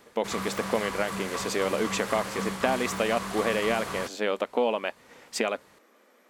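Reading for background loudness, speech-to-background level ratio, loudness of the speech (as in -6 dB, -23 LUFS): -34.0 LUFS, 4.5 dB, -29.5 LUFS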